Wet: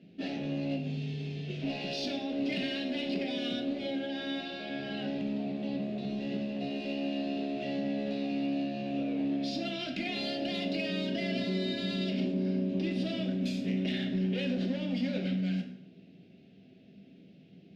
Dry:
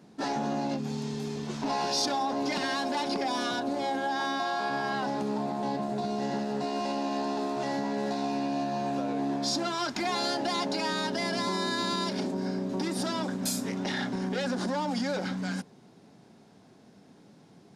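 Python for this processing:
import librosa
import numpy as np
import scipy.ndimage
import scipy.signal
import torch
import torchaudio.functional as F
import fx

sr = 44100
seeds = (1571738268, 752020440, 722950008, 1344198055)

p1 = fx.curve_eq(x, sr, hz=(120.0, 170.0, 670.0, 950.0, 2700.0, 9000.0), db=(0, 3, -4, -28, 8, -27))
p2 = np.clip(p1, -10.0 ** (-29.5 / 20.0), 10.0 ** (-29.5 / 20.0))
p3 = p1 + F.gain(torch.from_numpy(p2), -10.5).numpy()
p4 = fx.rev_plate(p3, sr, seeds[0], rt60_s=0.73, hf_ratio=0.75, predelay_ms=0, drr_db=3.0)
y = F.gain(torch.from_numpy(p4), -5.5).numpy()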